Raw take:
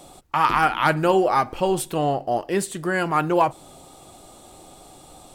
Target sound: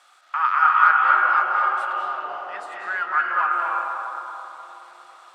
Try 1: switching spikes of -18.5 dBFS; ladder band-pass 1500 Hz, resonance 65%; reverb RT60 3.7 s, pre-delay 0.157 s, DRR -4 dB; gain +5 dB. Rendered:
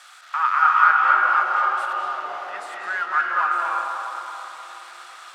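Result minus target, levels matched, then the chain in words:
switching spikes: distortion +12 dB
switching spikes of -30.5 dBFS; ladder band-pass 1500 Hz, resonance 65%; reverb RT60 3.7 s, pre-delay 0.157 s, DRR -4 dB; gain +5 dB

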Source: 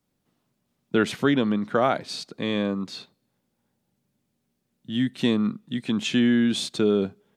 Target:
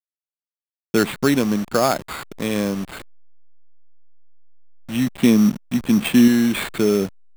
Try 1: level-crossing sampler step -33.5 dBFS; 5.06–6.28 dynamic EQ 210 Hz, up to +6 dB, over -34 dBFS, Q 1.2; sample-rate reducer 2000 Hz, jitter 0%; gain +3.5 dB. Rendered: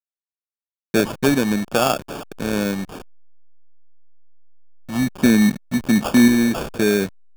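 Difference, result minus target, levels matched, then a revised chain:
sample-rate reducer: distortion +6 dB
level-crossing sampler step -33.5 dBFS; 5.06–6.28 dynamic EQ 210 Hz, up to +6 dB, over -34 dBFS, Q 1.2; sample-rate reducer 5800 Hz, jitter 0%; gain +3.5 dB

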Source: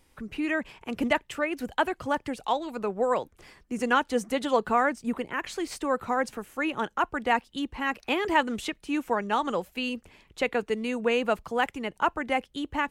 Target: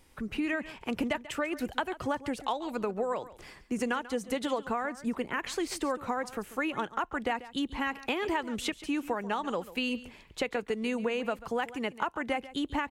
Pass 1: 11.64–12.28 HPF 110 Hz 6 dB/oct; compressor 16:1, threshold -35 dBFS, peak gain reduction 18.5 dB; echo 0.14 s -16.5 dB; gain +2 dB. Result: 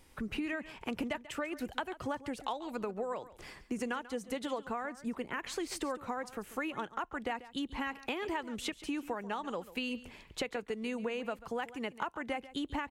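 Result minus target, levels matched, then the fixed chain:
compressor: peak gain reduction +5.5 dB
11.64–12.28 HPF 110 Hz 6 dB/oct; compressor 16:1, threshold -29 dBFS, peak gain reduction 13 dB; echo 0.14 s -16.5 dB; gain +2 dB

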